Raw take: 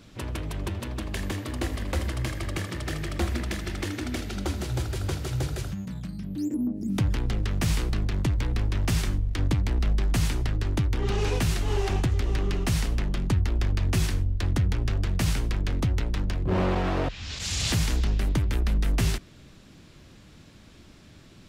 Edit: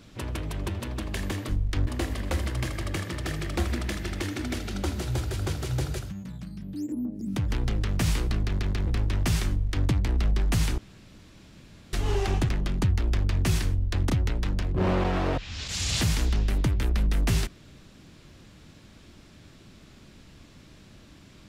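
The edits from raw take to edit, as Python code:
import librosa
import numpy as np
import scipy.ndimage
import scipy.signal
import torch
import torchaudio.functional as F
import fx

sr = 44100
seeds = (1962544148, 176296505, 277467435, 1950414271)

y = fx.edit(x, sr, fx.clip_gain(start_s=5.61, length_s=1.51, db=-3.5),
    fx.stutter_over(start_s=8.07, slice_s=0.14, count=3),
    fx.duplicate(start_s=9.11, length_s=0.38, to_s=1.49),
    fx.room_tone_fill(start_s=10.4, length_s=1.15),
    fx.cut(start_s=12.11, length_s=0.86),
    fx.cut(start_s=14.58, length_s=1.23), tone=tone)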